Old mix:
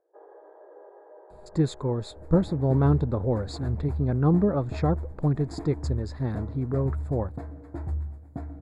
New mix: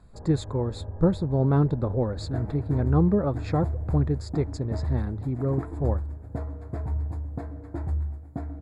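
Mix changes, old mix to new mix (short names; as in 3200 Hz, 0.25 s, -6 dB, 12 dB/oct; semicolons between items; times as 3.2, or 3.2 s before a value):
speech: entry -1.30 s; first sound: remove brick-wall FIR high-pass 320 Hz; reverb: on, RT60 2.1 s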